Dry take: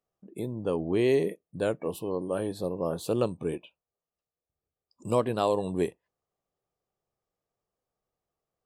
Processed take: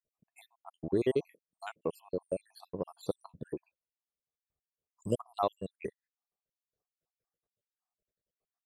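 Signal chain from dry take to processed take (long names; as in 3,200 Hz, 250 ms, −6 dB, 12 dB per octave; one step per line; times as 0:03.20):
time-frequency cells dropped at random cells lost 69%
transient designer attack +4 dB, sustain −5 dB
level −4.5 dB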